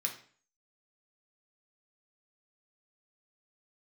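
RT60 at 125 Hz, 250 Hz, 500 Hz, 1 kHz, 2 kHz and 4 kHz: 0.50, 0.50, 0.45, 0.45, 0.45, 0.40 seconds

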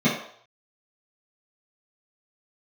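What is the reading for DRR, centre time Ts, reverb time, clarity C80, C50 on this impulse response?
−11.0 dB, 37 ms, 0.60 s, 8.5 dB, 4.5 dB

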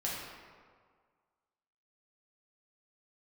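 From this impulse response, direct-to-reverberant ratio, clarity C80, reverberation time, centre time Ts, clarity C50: −6.0 dB, 1.5 dB, 1.8 s, 95 ms, −0.5 dB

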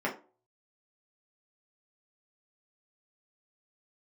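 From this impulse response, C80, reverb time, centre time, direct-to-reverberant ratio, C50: 17.0 dB, 0.40 s, 18 ms, −4.5 dB, 11.0 dB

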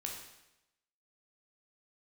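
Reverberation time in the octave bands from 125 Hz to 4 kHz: 0.90, 0.90, 0.90, 0.90, 0.90, 0.85 seconds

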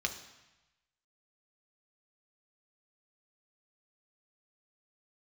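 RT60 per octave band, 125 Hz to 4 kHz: 1.2, 0.95, 0.95, 1.1, 1.1, 1.0 seconds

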